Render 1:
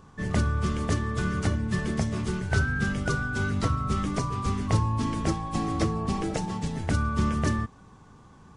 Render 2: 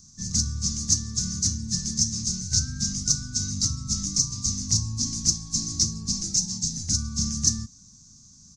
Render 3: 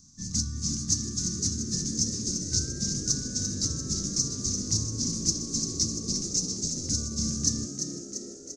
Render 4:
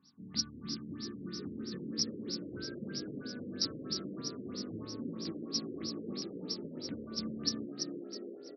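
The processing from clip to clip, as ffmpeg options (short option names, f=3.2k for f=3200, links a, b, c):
-af "firequalizer=gain_entry='entry(240,0);entry(350,-16);entry(560,-28);entry(1200,-16);entry(1900,-14);entry(3900,0);entry(6300,3);entry(9000,-24)':delay=0.05:min_phase=1,aexciter=amount=15.8:drive=7.6:freq=4.9k,volume=-4dB"
-filter_complex "[0:a]equalizer=f=300:w=1.8:g=7,asplit=2[a][b];[b]asplit=8[c][d][e][f][g][h][i][j];[c]adelay=343,afreqshift=63,volume=-7dB[k];[d]adelay=686,afreqshift=126,volume=-11.4dB[l];[e]adelay=1029,afreqshift=189,volume=-15.9dB[m];[f]adelay=1372,afreqshift=252,volume=-20.3dB[n];[g]adelay=1715,afreqshift=315,volume=-24.7dB[o];[h]adelay=2058,afreqshift=378,volume=-29.2dB[p];[i]adelay=2401,afreqshift=441,volume=-33.6dB[q];[j]adelay=2744,afreqshift=504,volume=-38.1dB[r];[k][l][m][n][o][p][q][r]amix=inputs=8:normalize=0[s];[a][s]amix=inputs=2:normalize=0,volume=-4.5dB"
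-af "highpass=350,lowpass=7.7k,afftfilt=real='re*lt(b*sr/1024,550*pow(5900/550,0.5+0.5*sin(2*PI*3.1*pts/sr)))':imag='im*lt(b*sr/1024,550*pow(5900/550,0.5+0.5*sin(2*PI*3.1*pts/sr)))':win_size=1024:overlap=0.75,volume=2dB"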